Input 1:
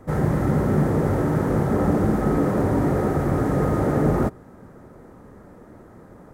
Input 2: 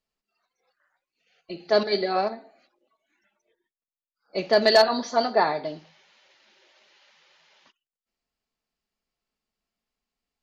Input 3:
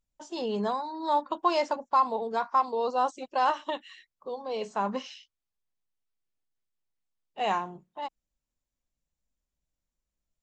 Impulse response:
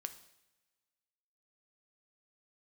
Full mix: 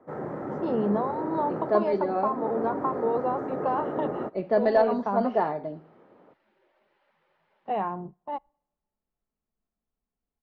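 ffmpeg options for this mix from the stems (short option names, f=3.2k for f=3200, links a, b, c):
-filter_complex "[0:a]highpass=420,aemphasis=mode=production:type=50kf,volume=-7.5dB[a];[1:a]volume=-4.5dB,asplit=2[b][c];[2:a]agate=range=-18dB:threshold=-48dB:ratio=16:detection=peak,acompressor=threshold=-27dB:ratio=6,adelay=300,volume=2dB,asplit=2[d][e];[e]volume=-20dB[f];[c]apad=whole_len=279390[g];[a][g]sidechaincompress=threshold=-33dB:ratio=8:attack=34:release=390[h];[3:a]atrim=start_sample=2205[i];[f][i]afir=irnorm=-1:irlink=0[j];[h][b][d][j]amix=inputs=4:normalize=0,lowpass=1.3k,lowshelf=f=320:g=7"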